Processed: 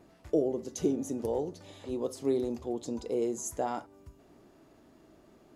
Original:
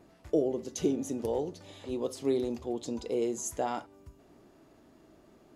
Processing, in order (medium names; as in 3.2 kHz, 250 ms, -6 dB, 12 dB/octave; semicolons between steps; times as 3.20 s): dynamic bell 3 kHz, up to -6 dB, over -55 dBFS, Q 1